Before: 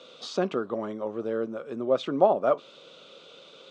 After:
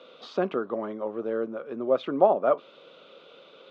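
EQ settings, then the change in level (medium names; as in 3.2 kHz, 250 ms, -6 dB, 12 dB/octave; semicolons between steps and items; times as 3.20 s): Bessel high-pass 190 Hz, order 2; low-pass 2.7 kHz 12 dB/octave; +1.0 dB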